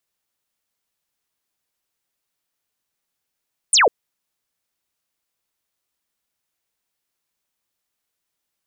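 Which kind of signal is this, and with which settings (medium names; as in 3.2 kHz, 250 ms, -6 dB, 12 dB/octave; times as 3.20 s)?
laser zap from 10 kHz, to 390 Hz, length 0.15 s sine, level -10.5 dB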